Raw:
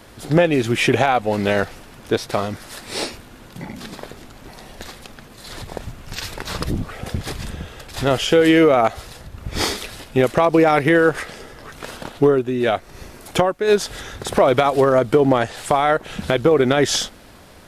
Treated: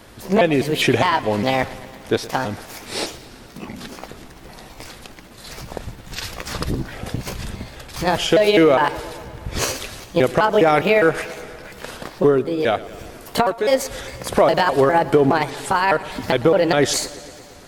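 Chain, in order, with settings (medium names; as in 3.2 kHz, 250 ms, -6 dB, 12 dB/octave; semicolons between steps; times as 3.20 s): pitch shift switched off and on +4.5 st, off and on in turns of 204 ms; modulated delay 115 ms, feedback 71%, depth 52 cents, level -18.5 dB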